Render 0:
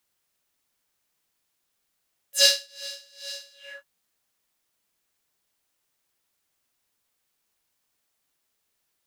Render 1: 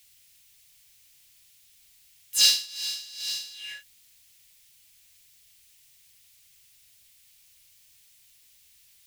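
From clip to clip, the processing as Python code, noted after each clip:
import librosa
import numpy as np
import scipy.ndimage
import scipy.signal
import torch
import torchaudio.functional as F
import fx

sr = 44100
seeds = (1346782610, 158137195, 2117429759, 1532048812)

y = scipy.signal.sosfilt(scipy.signal.cheby2(4, 60, [320.0, 910.0], 'bandstop', fs=sr, output='sos'), x)
y = fx.power_curve(y, sr, exponent=0.7)
y = y * librosa.db_to_amplitude(-3.0)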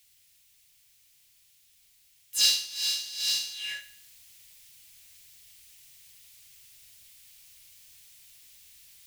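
y = fx.rider(x, sr, range_db=4, speed_s=0.5)
y = fx.echo_feedback(y, sr, ms=73, feedback_pct=45, wet_db=-13.5)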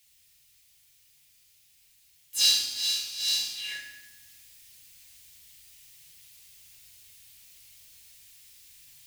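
y = fx.rev_fdn(x, sr, rt60_s=1.1, lf_ratio=1.55, hf_ratio=0.9, size_ms=22.0, drr_db=0.5)
y = y * librosa.db_to_amplitude(-2.0)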